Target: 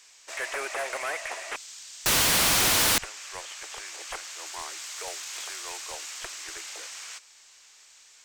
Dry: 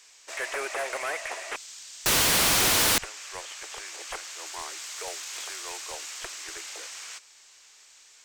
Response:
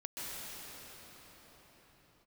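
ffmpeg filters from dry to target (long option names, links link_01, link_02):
-af "equalizer=frequency=410:width_type=o:width=0.77:gain=-2.5"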